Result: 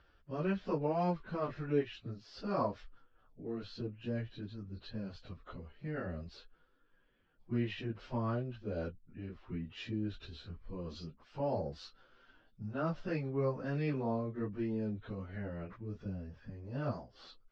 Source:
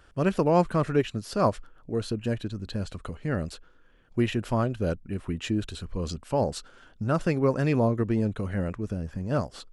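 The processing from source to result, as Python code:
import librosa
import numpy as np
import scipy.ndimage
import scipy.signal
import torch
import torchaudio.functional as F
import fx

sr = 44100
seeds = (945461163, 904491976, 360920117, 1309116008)

y = scipy.signal.sosfilt(scipy.signal.butter(6, 5200.0, 'lowpass', fs=sr, output='sos'), x)
y = fx.stretch_vocoder_free(y, sr, factor=1.8)
y = y * 10.0 ** (-8.5 / 20.0)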